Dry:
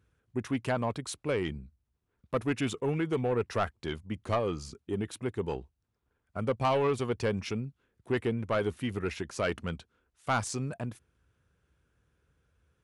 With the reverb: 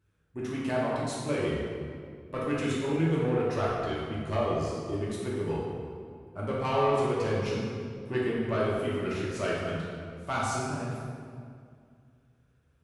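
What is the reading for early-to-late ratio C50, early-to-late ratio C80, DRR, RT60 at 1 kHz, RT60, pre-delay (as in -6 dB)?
-1.5 dB, 0.5 dB, -7.0 dB, 2.1 s, 2.2 s, 3 ms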